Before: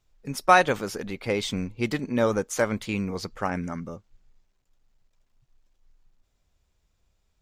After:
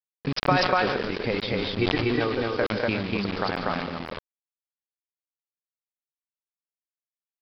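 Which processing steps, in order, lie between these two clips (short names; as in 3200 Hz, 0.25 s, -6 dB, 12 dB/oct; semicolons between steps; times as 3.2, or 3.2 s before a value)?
compressor 3:1, threshold -33 dBFS, peak gain reduction 16 dB; 1.6–2.45 comb 2.6 ms, depth 67%; 3.41–3.93 low shelf 120 Hz -9 dB; on a send: echo 0.144 s -8.5 dB; on the sum: transient shaper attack +9 dB, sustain -12 dB; loudspeakers at several distances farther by 71 m -10 dB, 83 m -1 dB; bit-crush 6-bit; downsampling 11025 Hz; sustainer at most 35 dB/s; gain +1 dB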